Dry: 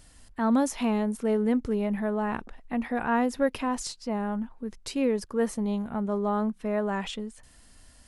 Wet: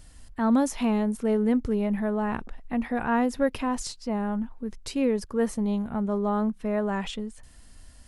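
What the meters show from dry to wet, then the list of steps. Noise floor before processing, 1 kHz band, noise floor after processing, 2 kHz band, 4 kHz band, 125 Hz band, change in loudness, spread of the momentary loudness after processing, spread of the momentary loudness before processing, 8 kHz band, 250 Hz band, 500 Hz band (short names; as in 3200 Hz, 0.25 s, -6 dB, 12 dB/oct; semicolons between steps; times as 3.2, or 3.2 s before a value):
-56 dBFS, 0.0 dB, -51 dBFS, 0.0 dB, 0.0 dB, +2.5 dB, +1.5 dB, 9 LU, 9 LU, 0.0 dB, +2.0 dB, +0.5 dB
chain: low shelf 140 Hz +7 dB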